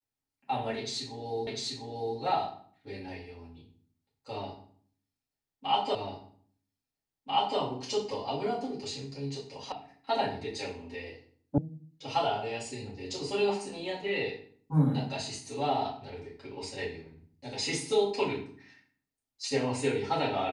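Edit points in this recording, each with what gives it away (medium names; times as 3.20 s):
1.47 s: repeat of the last 0.7 s
5.95 s: repeat of the last 1.64 s
9.72 s: sound stops dead
11.58 s: sound stops dead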